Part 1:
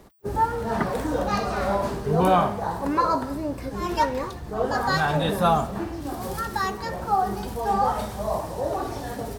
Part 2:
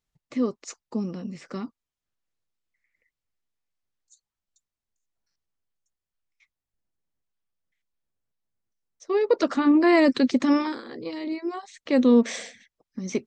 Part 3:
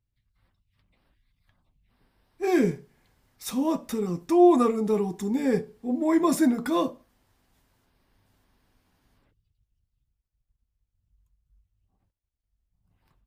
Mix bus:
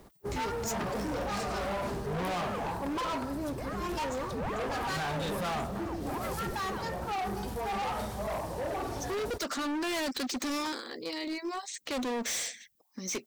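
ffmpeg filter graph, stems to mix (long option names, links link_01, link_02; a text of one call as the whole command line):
ffmpeg -i stem1.wav -i stem2.wav -i stem3.wav -filter_complex "[0:a]volume=-4dB[link_01];[1:a]aemphasis=mode=production:type=riaa,volume=-0.5dB[link_02];[2:a]aeval=exprs='val(0)*sin(2*PI*540*n/s+540*0.85/2.4*sin(2*PI*2.4*n/s))':channel_layout=same,volume=-11.5dB[link_03];[link_01][link_02][link_03]amix=inputs=3:normalize=0,volume=31dB,asoftclip=hard,volume=-31dB" out.wav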